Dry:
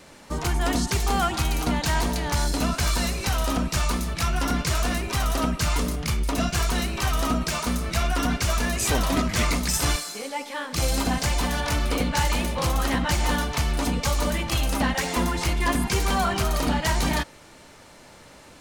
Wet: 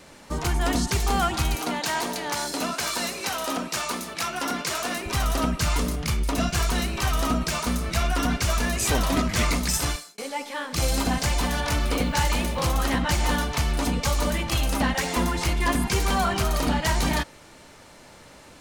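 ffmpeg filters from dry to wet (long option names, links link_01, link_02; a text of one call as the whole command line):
ffmpeg -i in.wav -filter_complex "[0:a]asettb=1/sr,asplit=3[link_01][link_02][link_03];[link_01]atrim=end=1.554[link_04];[link_02]atrim=start=1.55:end=5.06,asetpts=PTS-STARTPTS,afade=type=in:duration=0.004:curve=qsin,afade=type=out:start_time=3.506:duration=0.004:curve=qsin,highpass=290[link_05];[link_03]atrim=start=5.056[link_06];[link_04][link_05]acrossfade=duration=0.004:curve1=hsin:curve2=qsin[link_07];[link_07][link_06]acrossfade=duration=0.004:curve1=qsin:curve2=hsin,asettb=1/sr,asplit=3[link_08][link_09][link_10];[link_08]atrim=end=11.834[link_11];[link_09]atrim=start=11.83:end=12.74,asetpts=PTS-STARTPTS,afade=type=in:duration=0.004:curve=qsin,afade=type=out:start_time=0.906:duration=0.004:curve=qsin,acrusher=bits=7:mix=0:aa=0.5[link_12];[link_10]atrim=start=12.736[link_13];[link_11][link_12]acrossfade=duration=0.004:curve1=hsin:curve2=qsin[link_14];[link_14][link_13]acrossfade=duration=0.004:curve1=qsin:curve2=hsin,asplit=2[link_15][link_16];[link_15]atrim=end=10.18,asetpts=PTS-STARTPTS,afade=type=out:start_time=9.74:duration=0.44[link_17];[link_16]atrim=start=10.18,asetpts=PTS-STARTPTS,afade=type=in:duration=0.004:curve=hsin[link_18];[link_17][link_18]concat=n=2:v=0:a=1" out.wav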